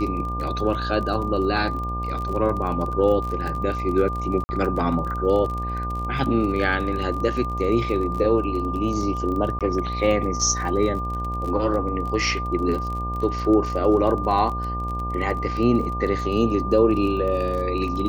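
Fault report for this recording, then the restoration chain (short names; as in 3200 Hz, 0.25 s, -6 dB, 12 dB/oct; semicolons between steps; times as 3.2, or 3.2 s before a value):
buzz 60 Hz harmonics 19 -29 dBFS
crackle 28/s -29 dBFS
tone 1200 Hz -28 dBFS
4.44–4.49 gap 50 ms
9.59–9.61 gap 17 ms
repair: de-click; de-hum 60 Hz, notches 19; notch 1200 Hz, Q 30; interpolate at 4.44, 50 ms; interpolate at 9.59, 17 ms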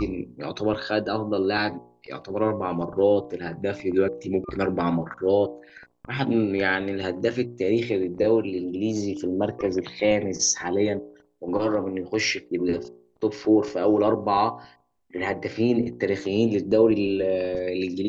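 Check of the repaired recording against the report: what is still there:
none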